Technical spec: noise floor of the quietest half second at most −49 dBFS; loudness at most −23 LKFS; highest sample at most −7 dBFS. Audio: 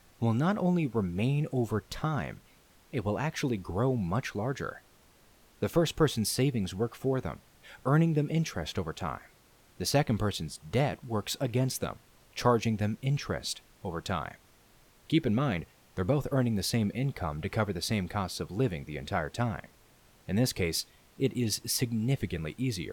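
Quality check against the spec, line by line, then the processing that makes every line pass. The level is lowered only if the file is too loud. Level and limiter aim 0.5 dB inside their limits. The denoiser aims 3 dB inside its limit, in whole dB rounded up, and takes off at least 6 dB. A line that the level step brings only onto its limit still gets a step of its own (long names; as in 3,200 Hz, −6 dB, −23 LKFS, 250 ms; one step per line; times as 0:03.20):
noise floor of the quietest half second −61 dBFS: in spec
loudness −31.0 LKFS: in spec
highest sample −11.5 dBFS: in spec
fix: no processing needed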